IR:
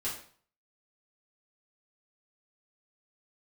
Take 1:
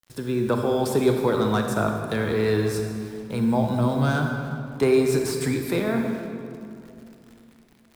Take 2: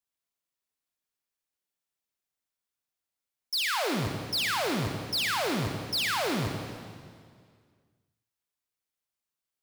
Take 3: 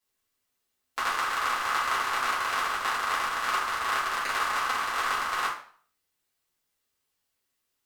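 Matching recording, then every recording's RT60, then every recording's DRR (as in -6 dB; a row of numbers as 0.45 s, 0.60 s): 3; 2.7 s, 2.0 s, 0.50 s; 3.0 dB, 3.5 dB, -9.0 dB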